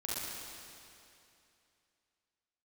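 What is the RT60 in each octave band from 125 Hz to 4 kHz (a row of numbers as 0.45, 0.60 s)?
2.7, 2.7, 2.7, 2.7, 2.7, 2.6 s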